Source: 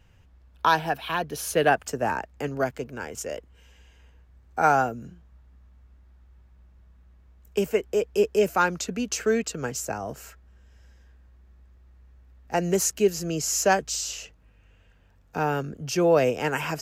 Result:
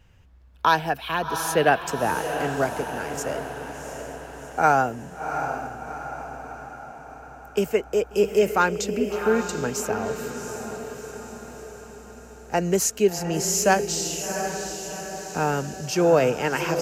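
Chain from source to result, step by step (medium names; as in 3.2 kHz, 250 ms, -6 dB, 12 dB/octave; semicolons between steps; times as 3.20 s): 8.98–9.49 s: low-pass 1.8 kHz 12 dB/octave; echo that smears into a reverb 726 ms, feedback 55%, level -7.5 dB; trim +1.5 dB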